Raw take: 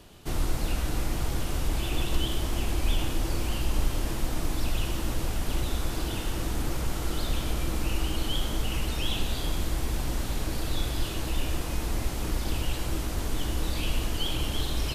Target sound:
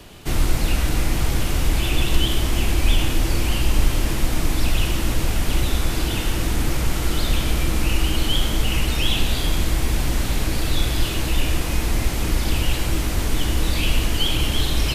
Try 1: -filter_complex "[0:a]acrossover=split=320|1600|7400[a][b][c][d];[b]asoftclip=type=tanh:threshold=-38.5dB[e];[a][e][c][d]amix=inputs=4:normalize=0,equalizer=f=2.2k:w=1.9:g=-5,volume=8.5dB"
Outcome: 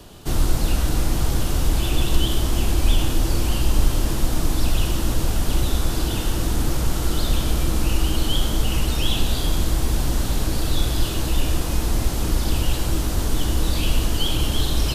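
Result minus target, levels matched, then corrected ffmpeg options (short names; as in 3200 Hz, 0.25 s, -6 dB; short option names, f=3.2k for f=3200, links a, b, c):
2000 Hz band -5.0 dB
-filter_complex "[0:a]acrossover=split=320|1600|7400[a][b][c][d];[b]asoftclip=type=tanh:threshold=-38.5dB[e];[a][e][c][d]amix=inputs=4:normalize=0,equalizer=f=2.2k:w=1.9:g=3.5,volume=8.5dB"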